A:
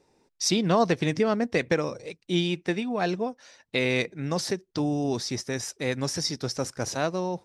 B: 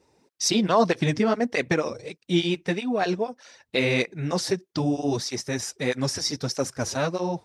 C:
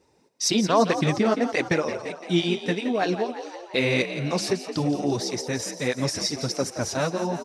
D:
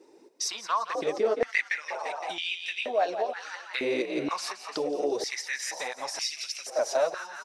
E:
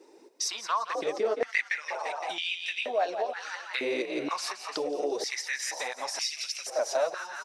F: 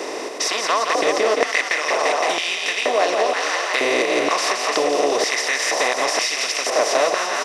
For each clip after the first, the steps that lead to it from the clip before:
through-zero flanger with one copy inverted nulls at 1.6 Hz, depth 7.5 ms; level +5 dB
echo with shifted repeats 171 ms, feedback 62%, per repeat +56 Hz, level −11 dB
downward compressor 6 to 1, threshold −31 dBFS, peak gain reduction 15.5 dB; high-pass on a step sequencer 2.1 Hz 340–2,600 Hz; level +1.5 dB
high-pass filter 300 Hz 6 dB per octave; in parallel at −2 dB: downward compressor, threshold −36 dBFS, peak gain reduction 14 dB; on the sum: level −2.5 dB
compressor on every frequency bin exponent 0.4; level +4.5 dB

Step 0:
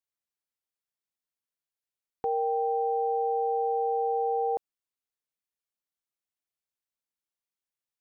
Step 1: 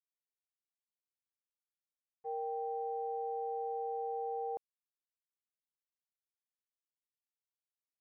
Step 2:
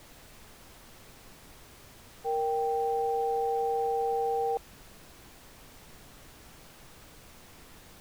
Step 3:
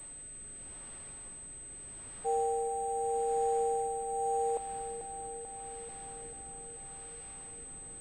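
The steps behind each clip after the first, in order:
downward expander −21 dBFS; level −4 dB
background noise pink −61 dBFS; level +9 dB
rotating-speaker cabinet horn 0.8 Hz; feedback echo with a low-pass in the loop 439 ms, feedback 75%, level −10 dB; switching amplifier with a slow clock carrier 8,200 Hz

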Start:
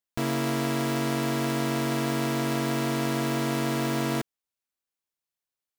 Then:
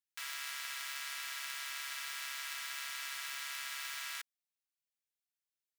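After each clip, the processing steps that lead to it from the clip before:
high-pass filter 1,500 Hz 24 dB per octave
level −5.5 dB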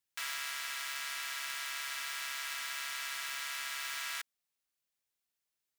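in parallel at −4 dB: soft clipping −37 dBFS, distortion −9 dB
on the sum: speech leveller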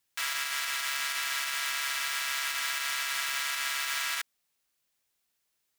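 brickwall limiter −27 dBFS, peak gain reduction 5.5 dB
level +9 dB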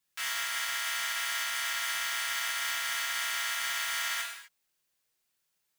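reverb whose tail is shaped and stops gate 280 ms falling, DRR −2.5 dB
level −5 dB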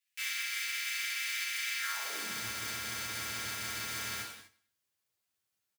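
lower of the sound and its delayed copy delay 9.9 ms
high-pass filter sweep 2,200 Hz → 89 Hz, 0:01.78–0:02.48
repeating echo 94 ms, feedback 44%, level −20 dB
level −4 dB

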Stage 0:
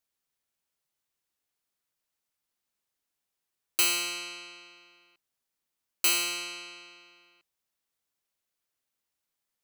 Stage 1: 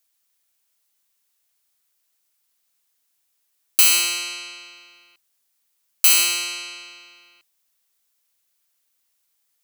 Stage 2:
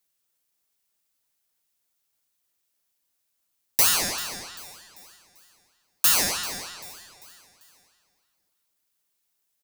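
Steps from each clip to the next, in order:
spectral tilt +2.5 dB per octave; in parallel at +1.5 dB: brickwall limiter −13 dBFS, peak gain reduction 10 dB; on the sum: level −1 dB
repeating echo 392 ms, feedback 46%, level −17.5 dB; ring modulator whose carrier an LFO sweeps 1,800 Hz, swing 35%, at 3.2 Hz; level −2 dB

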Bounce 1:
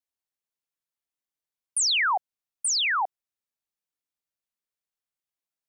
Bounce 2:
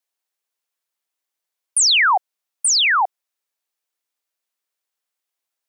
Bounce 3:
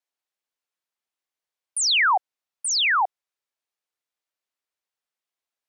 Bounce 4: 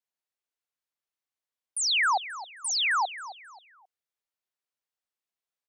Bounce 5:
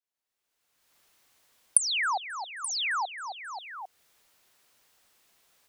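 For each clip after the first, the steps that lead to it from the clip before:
high-pass filter 400 Hz; level +8.5 dB
high-shelf EQ 7,700 Hz −10 dB; level −3.5 dB
repeating echo 267 ms, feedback 33%, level −14.5 dB; level −5 dB
camcorder AGC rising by 31 dB per second; level −4 dB

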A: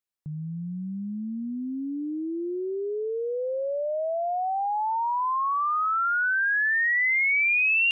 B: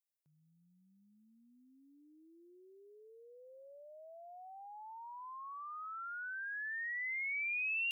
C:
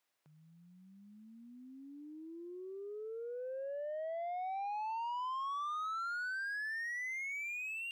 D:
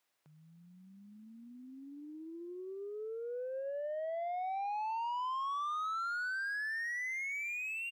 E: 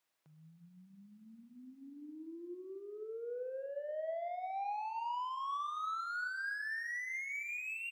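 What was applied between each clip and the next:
first difference; level −5.5 dB
downward compressor 6 to 1, threshold −46 dBFS, peak gain reduction 11 dB; mid-hump overdrive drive 19 dB, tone 1,500 Hz, clips at −40.5 dBFS; level +8 dB
echo with shifted repeats 297 ms, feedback 50%, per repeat +50 Hz, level −22 dB; level +2 dB
rectangular room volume 1,000 cubic metres, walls mixed, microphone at 0.64 metres; level −3 dB

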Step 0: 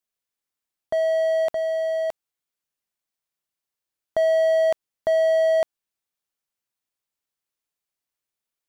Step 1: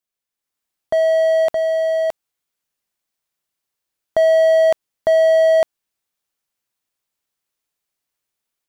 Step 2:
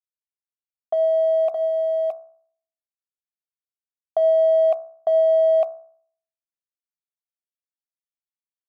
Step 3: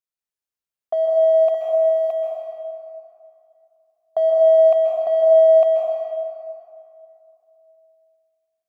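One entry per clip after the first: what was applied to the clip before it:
automatic gain control gain up to 6 dB
formant filter a; centre clipping without the shift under −53.5 dBFS; hum removal 65.16 Hz, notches 25; level +2.5 dB
dense smooth reverb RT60 2.6 s, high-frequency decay 0.65×, pre-delay 120 ms, DRR −2.5 dB

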